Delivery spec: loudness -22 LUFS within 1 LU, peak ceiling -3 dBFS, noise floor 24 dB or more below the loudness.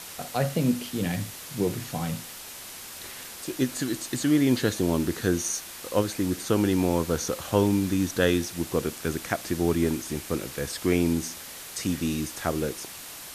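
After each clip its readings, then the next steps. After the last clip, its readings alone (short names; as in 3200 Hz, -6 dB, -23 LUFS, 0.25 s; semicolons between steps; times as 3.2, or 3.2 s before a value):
noise floor -41 dBFS; noise floor target -51 dBFS; loudness -27.0 LUFS; peak -7.0 dBFS; loudness target -22.0 LUFS
-> denoiser 10 dB, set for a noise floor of -41 dBFS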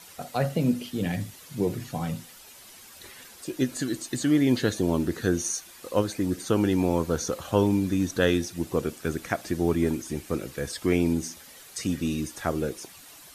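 noise floor -49 dBFS; noise floor target -52 dBFS
-> denoiser 6 dB, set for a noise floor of -49 dBFS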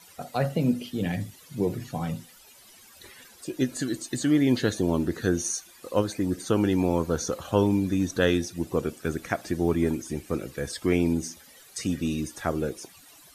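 noise floor -53 dBFS; loudness -27.5 LUFS; peak -7.5 dBFS; loudness target -22.0 LUFS
-> gain +5.5 dB; limiter -3 dBFS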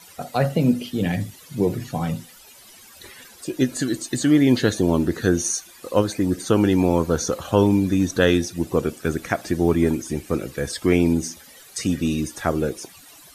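loudness -22.0 LUFS; peak -3.0 dBFS; noise floor -47 dBFS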